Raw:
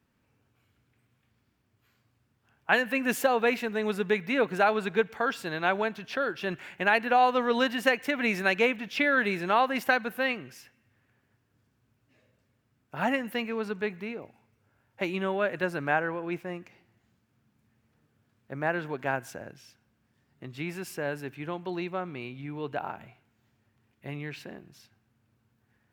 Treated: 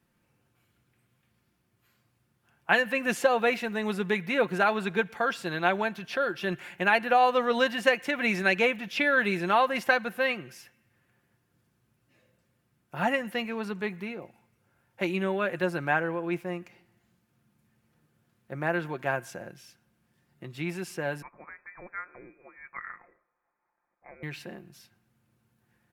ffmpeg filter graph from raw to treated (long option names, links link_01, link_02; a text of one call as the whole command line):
ffmpeg -i in.wav -filter_complex "[0:a]asettb=1/sr,asplit=3[link_01][link_02][link_03];[link_01]atrim=end=21.224[link_04];[link_02]atrim=start=21.22:end=24.23,asetpts=PTS-STARTPTS,afade=type=in:duration=0.004:curve=qsin,afade=type=out:start_time=3.006:duration=0.004:curve=qsin,highpass=1200,lowpass=frequency=2300:width_type=q:width=0.5098,lowpass=frequency=2300:width_type=q:width=0.6013,lowpass=frequency=2300:width_type=q:width=0.9,lowpass=frequency=2300:width_type=q:width=2.563,afreqshift=-2700[link_05];[link_03]atrim=start=24.226[link_06];[link_04][link_05]acrossfade=duration=0.004:curve1=hsin:curve2=qsin[link_07];[link_07][link_06]acrossfade=duration=0.004:curve1=qsin:curve2=hsin,acrossover=split=8200[link_08][link_09];[link_09]acompressor=threshold=-60dB:ratio=4:attack=1:release=60[link_10];[link_08][link_10]amix=inputs=2:normalize=0,equalizer=frequency=11000:width_type=o:width=0.66:gain=7,aecho=1:1:5.7:0.41" out.wav